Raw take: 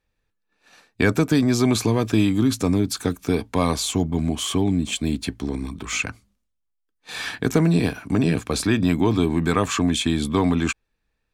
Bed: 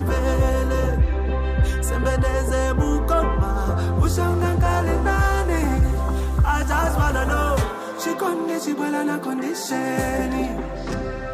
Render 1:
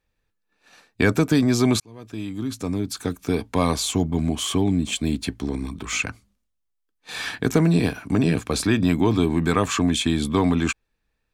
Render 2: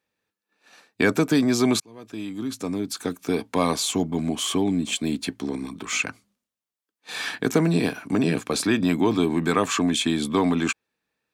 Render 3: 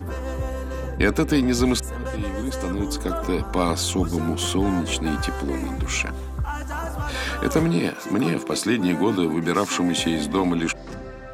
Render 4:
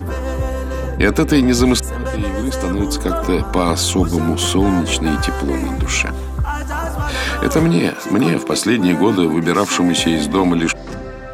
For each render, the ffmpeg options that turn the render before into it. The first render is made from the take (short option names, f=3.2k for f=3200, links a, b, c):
-filter_complex "[0:a]asplit=2[a][b];[a]atrim=end=1.8,asetpts=PTS-STARTPTS,afade=t=out:st=1.796:d=0.004:c=hsin[c];[b]atrim=start=1.8,asetpts=PTS-STARTPTS,afade=t=in:d=1.8[d];[c][d]concat=n=2:v=0:a=1"
-af "highpass=190"
-filter_complex "[1:a]volume=-9dB[a];[0:a][a]amix=inputs=2:normalize=0"
-af "volume=7dB,alimiter=limit=-3dB:level=0:latency=1"